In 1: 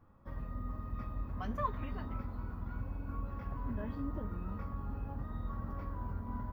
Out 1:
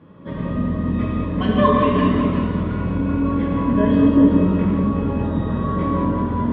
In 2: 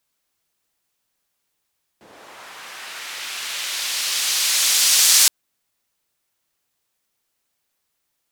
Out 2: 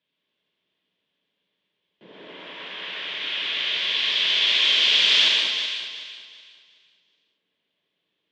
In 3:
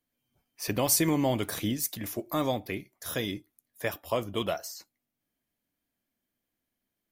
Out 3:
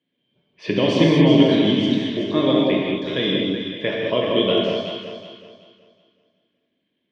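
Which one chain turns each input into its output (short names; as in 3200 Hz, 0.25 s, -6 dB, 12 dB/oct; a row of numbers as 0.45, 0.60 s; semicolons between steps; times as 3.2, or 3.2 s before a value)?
speaker cabinet 160–3400 Hz, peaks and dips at 170 Hz +10 dB, 290 Hz +4 dB, 440 Hz +5 dB, 780 Hz -9 dB, 1300 Hz -10 dB, 3300 Hz +10 dB; echo with dull and thin repeats by turns 0.187 s, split 1100 Hz, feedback 55%, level -3 dB; non-linear reverb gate 0.25 s flat, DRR -2.5 dB; match loudness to -19 LUFS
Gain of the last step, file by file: +18.0, -2.5, +5.5 dB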